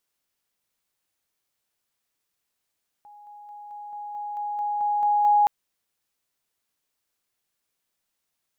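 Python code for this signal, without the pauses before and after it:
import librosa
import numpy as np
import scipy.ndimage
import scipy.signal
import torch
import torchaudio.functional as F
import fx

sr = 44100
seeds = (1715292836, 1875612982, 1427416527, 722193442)

y = fx.level_ladder(sr, hz=829.0, from_db=-45.0, step_db=3.0, steps=11, dwell_s=0.22, gap_s=0.0)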